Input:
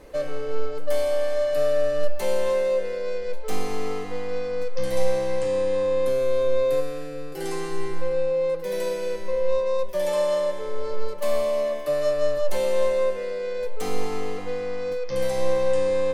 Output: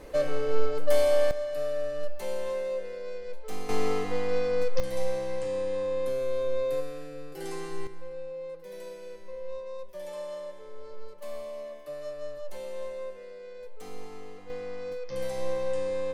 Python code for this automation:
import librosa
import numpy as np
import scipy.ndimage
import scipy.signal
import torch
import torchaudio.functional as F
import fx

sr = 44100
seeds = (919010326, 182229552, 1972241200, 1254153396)

y = fx.gain(x, sr, db=fx.steps((0.0, 1.0), (1.31, -9.0), (3.69, 1.0), (4.8, -7.0), (7.87, -15.0), (14.5, -8.0)))